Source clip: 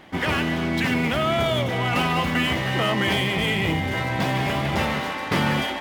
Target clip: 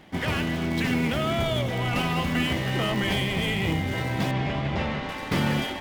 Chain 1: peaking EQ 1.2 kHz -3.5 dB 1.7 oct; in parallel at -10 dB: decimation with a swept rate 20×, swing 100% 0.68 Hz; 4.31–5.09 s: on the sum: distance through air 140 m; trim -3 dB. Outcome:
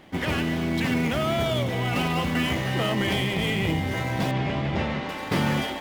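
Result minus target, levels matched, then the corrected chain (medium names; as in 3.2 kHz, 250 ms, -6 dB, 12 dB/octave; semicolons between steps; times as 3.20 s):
decimation with a swept rate: distortion -8 dB
peaking EQ 1.2 kHz -3.5 dB 1.7 oct; in parallel at -10 dB: decimation with a swept rate 69×, swing 100% 0.68 Hz; 4.31–5.09 s: on the sum: distance through air 140 m; trim -3 dB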